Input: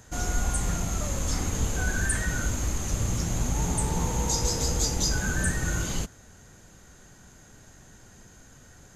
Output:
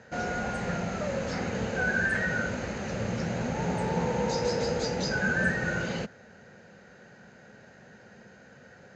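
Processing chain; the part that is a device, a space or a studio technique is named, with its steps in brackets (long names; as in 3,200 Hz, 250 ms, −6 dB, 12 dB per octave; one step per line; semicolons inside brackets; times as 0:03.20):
kitchen radio (loudspeaker in its box 180–4,100 Hz, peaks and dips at 210 Hz +4 dB, 300 Hz −9 dB, 520 Hz +7 dB, 1,100 Hz −8 dB, 1,600 Hz +4 dB, 3,400 Hz −10 dB)
level +3.5 dB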